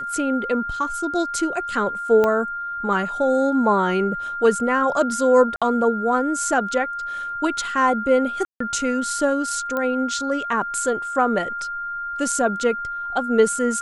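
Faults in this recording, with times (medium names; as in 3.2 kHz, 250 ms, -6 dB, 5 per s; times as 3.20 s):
whine 1.4 kHz -26 dBFS
2.24 s: pop -9 dBFS
5.56–5.62 s: dropout 56 ms
8.45–8.60 s: dropout 154 ms
9.77 s: pop -13 dBFS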